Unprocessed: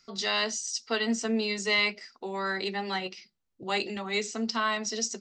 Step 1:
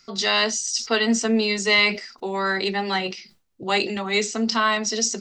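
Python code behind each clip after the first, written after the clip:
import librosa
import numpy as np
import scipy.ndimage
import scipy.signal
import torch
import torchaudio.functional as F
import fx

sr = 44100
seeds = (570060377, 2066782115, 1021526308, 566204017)

y = fx.sustainer(x, sr, db_per_s=130.0)
y = y * 10.0 ** (7.5 / 20.0)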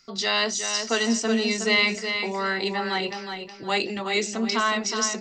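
y = fx.echo_feedback(x, sr, ms=367, feedback_pct=28, wet_db=-7.0)
y = y * 10.0 ** (-3.0 / 20.0)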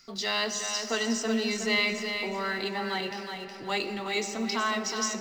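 y = fx.law_mismatch(x, sr, coded='mu')
y = fx.rev_freeverb(y, sr, rt60_s=4.1, hf_ratio=0.5, predelay_ms=35, drr_db=10.5)
y = y * 10.0 ** (-6.0 / 20.0)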